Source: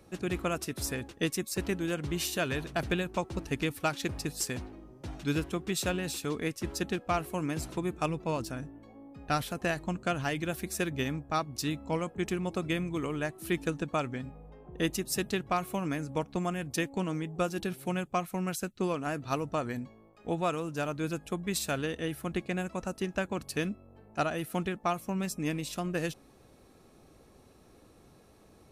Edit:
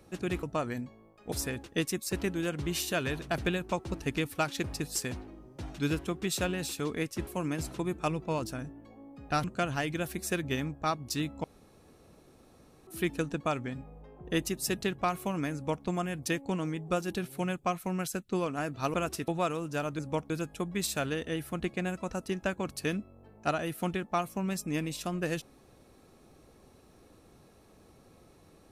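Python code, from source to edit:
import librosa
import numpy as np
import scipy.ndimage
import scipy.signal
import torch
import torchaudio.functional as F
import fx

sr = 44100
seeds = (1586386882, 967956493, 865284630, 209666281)

y = fx.edit(x, sr, fx.swap(start_s=0.43, length_s=0.34, other_s=19.42, other_length_s=0.89),
    fx.cut(start_s=6.72, length_s=0.53),
    fx.cut(start_s=9.42, length_s=0.5),
    fx.room_tone_fill(start_s=11.92, length_s=1.43),
    fx.duplicate(start_s=16.02, length_s=0.31, to_s=21.02), tone=tone)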